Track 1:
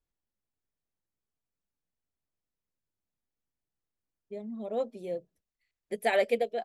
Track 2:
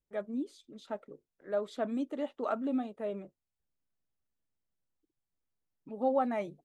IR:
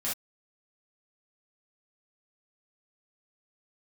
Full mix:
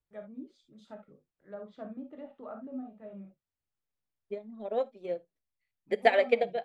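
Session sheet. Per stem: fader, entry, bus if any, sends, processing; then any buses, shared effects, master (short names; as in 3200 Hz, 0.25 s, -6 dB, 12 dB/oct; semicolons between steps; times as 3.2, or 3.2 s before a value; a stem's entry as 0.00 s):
-2.0 dB, 0.00 s, send -21.5 dB, LPF 3700 Hz 12 dB/oct; low shelf 260 Hz -10.5 dB; transient shaper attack +10 dB, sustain -4 dB
-12.5 dB, 0.00 s, send -5 dB, treble ducked by the level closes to 1200 Hz, closed at -29.5 dBFS; resonant low shelf 210 Hz +7.5 dB, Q 1.5; auto duck -16 dB, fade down 1.95 s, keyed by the first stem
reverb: on, pre-delay 3 ms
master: dry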